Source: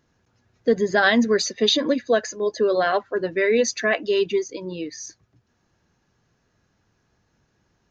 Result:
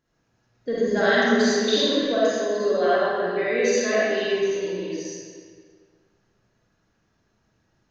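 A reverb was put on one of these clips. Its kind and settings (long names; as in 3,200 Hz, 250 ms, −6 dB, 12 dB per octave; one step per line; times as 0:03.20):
comb and all-pass reverb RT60 1.9 s, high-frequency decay 0.8×, pre-delay 15 ms, DRR −9 dB
level −10 dB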